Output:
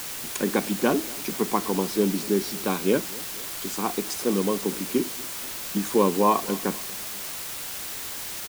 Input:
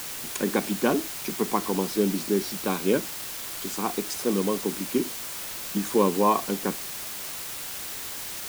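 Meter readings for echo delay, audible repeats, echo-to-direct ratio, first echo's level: 240 ms, 2, −20.0 dB, −21.5 dB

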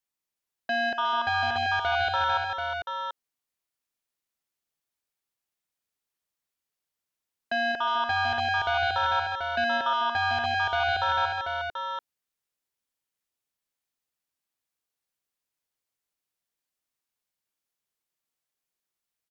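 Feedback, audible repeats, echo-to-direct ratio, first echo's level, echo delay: repeats not evenly spaced, 4, −3.5 dB, −19.0 dB, 54 ms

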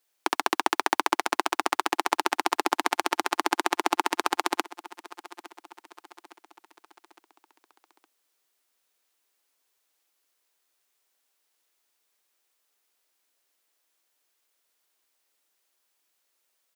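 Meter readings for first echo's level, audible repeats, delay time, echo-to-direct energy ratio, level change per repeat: −19.0 dB, 3, 861 ms, −18.0 dB, −6.0 dB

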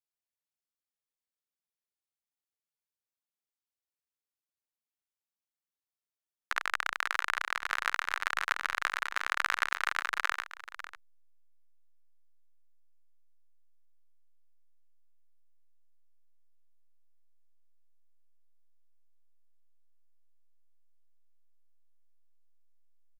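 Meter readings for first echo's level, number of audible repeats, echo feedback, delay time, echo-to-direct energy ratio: −13.5 dB, 1, repeats not evenly spaced, 548 ms, −13.5 dB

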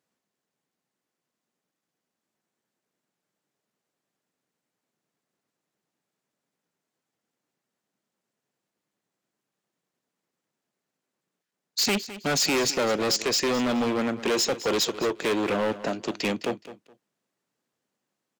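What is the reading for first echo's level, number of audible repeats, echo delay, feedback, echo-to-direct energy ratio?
−15.0 dB, 2, 210 ms, 22%, −15.0 dB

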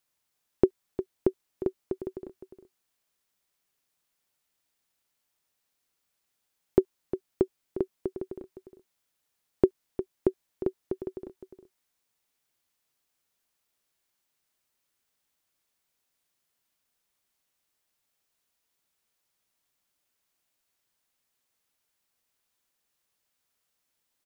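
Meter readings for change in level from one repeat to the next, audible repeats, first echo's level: repeats not evenly spaced, 1, −11.5 dB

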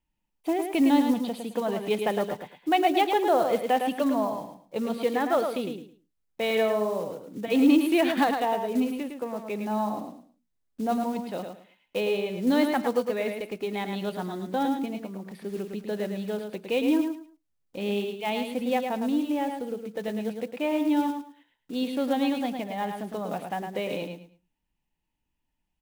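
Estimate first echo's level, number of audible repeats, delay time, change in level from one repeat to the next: −6.0 dB, 3, 108 ms, −13.0 dB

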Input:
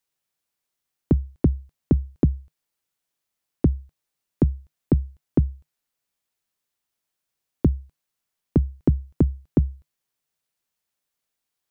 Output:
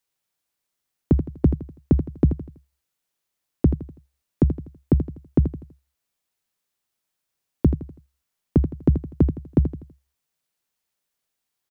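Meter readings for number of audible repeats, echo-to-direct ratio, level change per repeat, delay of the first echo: 3, −9.5 dB, −8.5 dB, 82 ms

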